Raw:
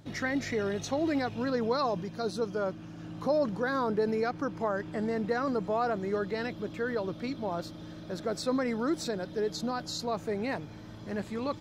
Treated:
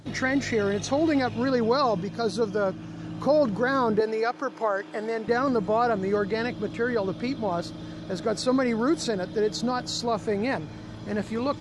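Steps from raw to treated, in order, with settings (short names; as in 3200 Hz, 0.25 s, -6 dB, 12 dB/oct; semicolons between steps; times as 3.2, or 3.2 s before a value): 4–5.28 HPF 410 Hz 12 dB/oct; gain +6 dB; AAC 96 kbps 24000 Hz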